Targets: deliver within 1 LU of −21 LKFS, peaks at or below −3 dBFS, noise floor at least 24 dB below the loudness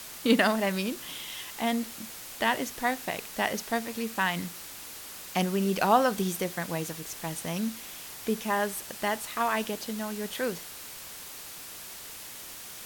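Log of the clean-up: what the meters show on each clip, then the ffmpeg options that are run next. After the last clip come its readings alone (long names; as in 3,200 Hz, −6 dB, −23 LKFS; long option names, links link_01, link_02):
background noise floor −43 dBFS; target noise floor −55 dBFS; integrated loudness −30.5 LKFS; sample peak −7.5 dBFS; target loudness −21.0 LKFS
→ -af "afftdn=noise_reduction=12:noise_floor=-43"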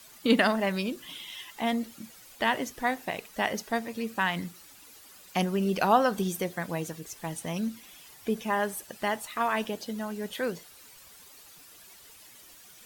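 background noise floor −53 dBFS; target noise floor −54 dBFS
→ -af "afftdn=noise_reduction=6:noise_floor=-53"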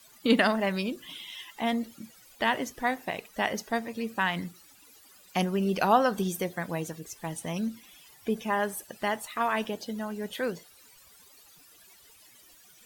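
background noise floor −57 dBFS; integrated loudness −30.0 LKFS; sample peak −7.5 dBFS; target loudness −21.0 LKFS
→ -af "volume=9dB,alimiter=limit=-3dB:level=0:latency=1"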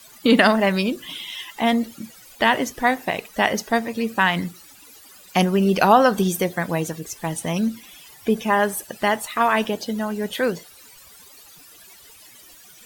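integrated loudness −21.5 LKFS; sample peak −3.0 dBFS; background noise floor −48 dBFS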